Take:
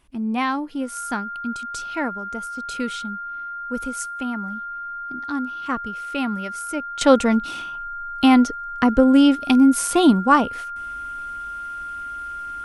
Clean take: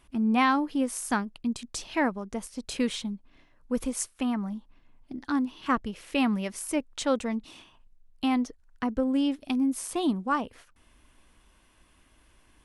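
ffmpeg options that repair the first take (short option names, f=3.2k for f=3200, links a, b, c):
-af "bandreject=f=1.4k:w=30,asetnsamples=n=441:p=0,asendcmd='7.01 volume volume -12dB',volume=0dB"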